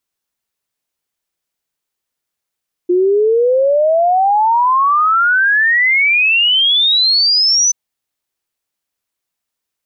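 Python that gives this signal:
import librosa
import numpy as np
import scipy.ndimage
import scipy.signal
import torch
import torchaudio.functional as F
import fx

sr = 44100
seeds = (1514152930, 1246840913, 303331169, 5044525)

y = fx.ess(sr, length_s=4.83, from_hz=350.0, to_hz=6100.0, level_db=-9.0)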